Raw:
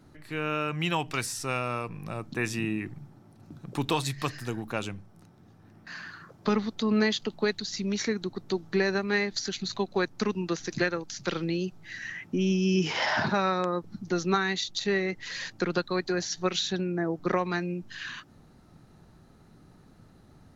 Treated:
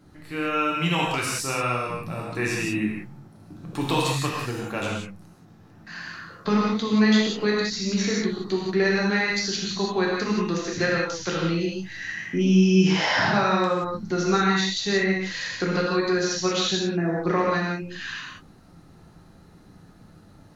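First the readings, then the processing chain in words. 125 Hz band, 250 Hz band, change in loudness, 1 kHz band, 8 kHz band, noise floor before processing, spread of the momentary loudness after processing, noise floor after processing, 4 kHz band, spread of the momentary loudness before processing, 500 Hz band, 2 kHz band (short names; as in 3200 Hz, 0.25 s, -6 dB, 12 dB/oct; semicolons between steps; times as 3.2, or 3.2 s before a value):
+6.0 dB, +6.5 dB, +5.5 dB, +5.5 dB, +5.5 dB, -56 dBFS, 12 LU, -51 dBFS, +5.5 dB, 12 LU, +4.5 dB, +5.5 dB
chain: non-linear reverb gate 0.21 s flat, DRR -4 dB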